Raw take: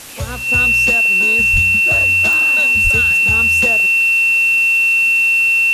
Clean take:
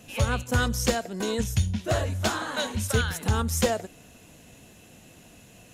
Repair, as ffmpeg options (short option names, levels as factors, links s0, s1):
-filter_complex "[0:a]adeclick=t=4,bandreject=f=2700:w=30,asplit=3[s0][s1][s2];[s0]afade=t=out:st=1.52:d=0.02[s3];[s1]highpass=f=140:w=0.5412,highpass=f=140:w=1.3066,afade=t=in:st=1.52:d=0.02,afade=t=out:st=1.64:d=0.02[s4];[s2]afade=t=in:st=1.64:d=0.02[s5];[s3][s4][s5]amix=inputs=3:normalize=0,asplit=3[s6][s7][s8];[s6]afade=t=out:st=2.83:d=0.02[s9];[s7]highpass=f=140:w=0.5412,highpass=f=140:w=1.3066,afade=t=in:st=2.83:d=0.02,afade=t=out:st=2.95:d=0.02[s10];[s8]afade=t=in:st=2.95:d=0.02[s11];[s9][s10][s11]amix=inputs=3:normalize=0,afwtdn=0.022"